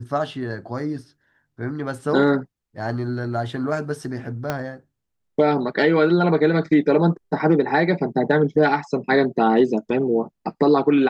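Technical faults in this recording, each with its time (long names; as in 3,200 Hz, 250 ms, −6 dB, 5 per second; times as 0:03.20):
0:04.50: click −10 dBFS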